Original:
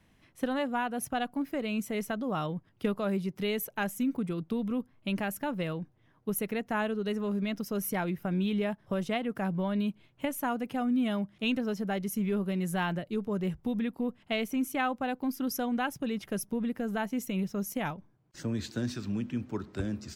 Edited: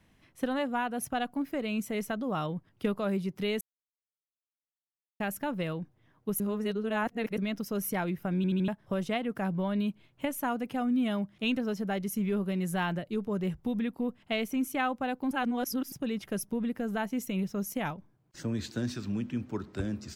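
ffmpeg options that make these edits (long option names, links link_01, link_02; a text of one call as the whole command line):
ffmpeg -i in.wav -filter_complex "[0:a]asplit=11[link_01][link_02][link_03][link_04][link_05][link_06][link_07][link_08][link_09][link_10][link_11];[link_01]atrim=end=3.61,asetpts=PTS-STARTPTS,afade=type=out:start_time=3.606:duration=0.004:curve=hsin[link_12];[link_02]atrim=start=3.61:end=5.2,asetpts=PTS-STARTPTS,volume=0[link_13];[link_03]atrim=start=5.2:end=6.402,asetpts=PTS-STARTPTS,afade=type=in:duration=0.004:curve=hsin[link_14];[link_04]atrim=start=6.398:end=7.382,asetpts=PTS-STARTPTS,areverse[link_15];[link_05]atrim=start=7.378:end=8.442[link_16];[link_06]atrim=start=8.358:end=8.442[link_17];[link_07]atrim=start=8.358:end=8.442[link_18];[link_08]atrim=start=8.358:end=8.442[link_19];[link_09]atrim=start=8.678:end=15.312[link_20];[link_10]atrim=start=15.308:end=15.922,asetpts=PTS-STARTPTS,areverse[link_21];[link_11]atrim=start=15.918[link_22];[link_12][link_13][link_14]concat=n=3:v=0:a=1[link_23];[link_23][link_15]acrossfade=duration=0.004:curve1=hsin:curve2=hsin[link_24];[link_24][link_16]acrossfade=duration=0.004:curve1=hsin:curve2=hsin[link_25];[link_25][link_17]acrossfade=duration=0.004:curve1=hsin:curve2=hsin[link_26];[link_26][link_18]acrossfade=duration=0.004:curve1=hsin:curve2=hsin[link_27];[link_27][link_19]acrossfade=duration=0.004:curve1=hsin:curve2=hsin[link_28];[link_28][link_20]acrossfade=duration=0.004:curve1=hsin:curve2=hsin[link_29];[link_29][link_21]acrossfade=duration=0.004:curve1=hsin:curve2=hsin[link_30];[link_30][link_22]acrossfade=duration=0.004:curve1=hsin:curve2=hsin" out.wav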